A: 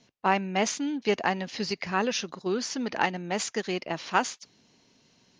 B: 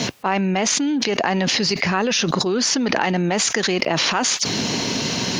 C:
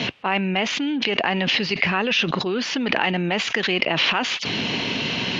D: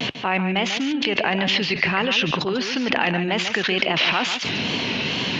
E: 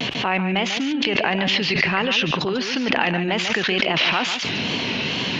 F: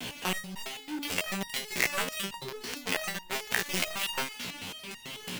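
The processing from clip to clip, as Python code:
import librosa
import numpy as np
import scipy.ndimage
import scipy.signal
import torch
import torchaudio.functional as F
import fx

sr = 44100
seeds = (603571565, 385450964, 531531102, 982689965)

y1 = scipy.signal.sosfilt(scipy.signal.butter(2, 73.0, 'highpass', fs=sr, output='sos'), x)
y1 = fx.env_flatten(y1, sr, amount_pct=100)
y2 = fx.lowpass_res(y1, sr, hz=2900.0, q=2.7)
y2 = F.gain(torch.from_numpy(y2), -3.5).numpy()
y3 = fx.wow_flutter(y2, sr, seeds[0], rate_hz=2.1, depth_cents=87.0)
y3 = y3 + 10.0 ** (-9.0 / 20.0) * np.pad(y3, (int(144 * sr / 1000.0), 0))[:len(y3)]
y4 = fx.pre_swell(y3, sr, db_per_s=46.0)
y5 = fx.quant_companded(y4, sr, bits=2)
y5 = fx.resonator_held(y5, sr, hz=9.1, low_hz=61.0, high_hz=930.0)
y5 = F.gain(torch.from_numpy(y5), -4.5).numpy()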